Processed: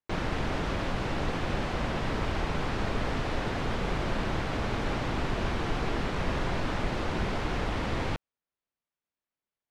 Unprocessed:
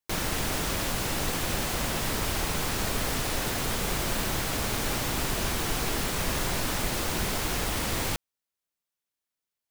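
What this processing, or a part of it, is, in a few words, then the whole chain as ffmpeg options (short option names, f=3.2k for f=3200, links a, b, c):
phone in a pocket: -af "lowpass=3.9k,highshelf=f=2.4k:g=-8.5,volume=1dB"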